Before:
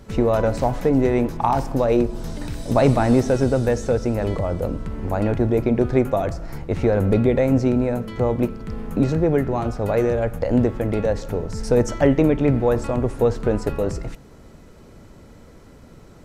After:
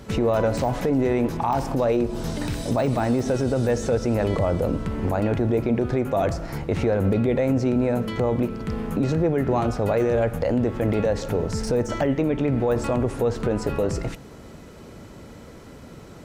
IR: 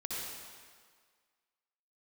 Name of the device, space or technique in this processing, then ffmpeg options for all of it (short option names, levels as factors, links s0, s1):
broadcast voice chain: -af "highpass=f=77:p=1,deesser=0.8,acompressor=threshold=0.1:ratio=6,equalizer=f=3000:t=o:w=0.77:g=2,alimiter=limit=0.126:level=0:latency=1:release=19,volume=1.68"